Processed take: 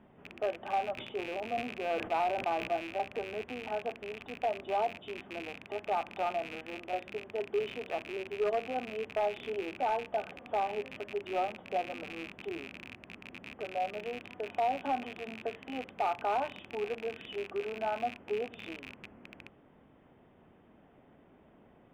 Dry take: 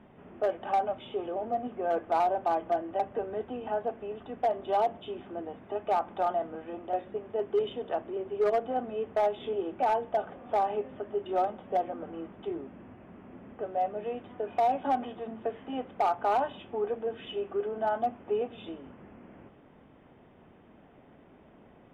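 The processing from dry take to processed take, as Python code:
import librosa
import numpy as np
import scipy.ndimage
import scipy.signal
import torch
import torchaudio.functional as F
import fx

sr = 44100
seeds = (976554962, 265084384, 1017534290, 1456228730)

y = fx.rattle_buzz(x, sr, strikes_db=-49.0, level_db=-27.0)
y = fx.sustainer(y, sr, db_per_s=93.0, at=(0.97, 2.75), fade=0.02)
y = y * 10.0 ** (-4.5 / 20.0)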